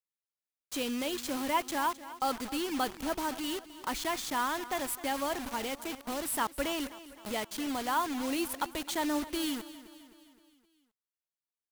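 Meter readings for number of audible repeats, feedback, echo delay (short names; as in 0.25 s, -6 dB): 4, 52%, 0.26 s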